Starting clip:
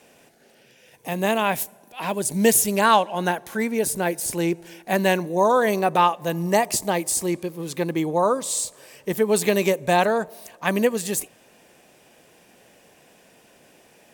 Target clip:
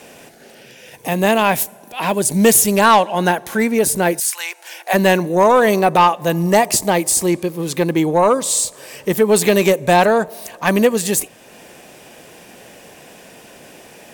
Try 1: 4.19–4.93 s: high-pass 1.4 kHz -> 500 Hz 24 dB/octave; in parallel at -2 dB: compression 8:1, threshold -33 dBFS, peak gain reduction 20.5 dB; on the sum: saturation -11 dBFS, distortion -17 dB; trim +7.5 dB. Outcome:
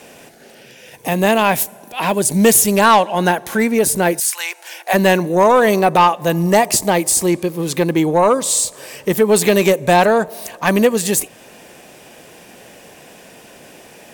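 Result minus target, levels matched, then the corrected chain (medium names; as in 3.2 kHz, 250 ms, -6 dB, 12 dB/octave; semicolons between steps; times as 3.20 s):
compression: peak gain reduction -9 dB
4.19–4.93 s: high-pass 1.4 kHz -> 500 Hz 24 dB/octave; in parallel at -2 dB: compression 8:1, threshold -43.5 dBFS, peak gain reduction 30 dB; on the sum: saturation -11 dBFS, distortion -18 dB; trim +7.5 dB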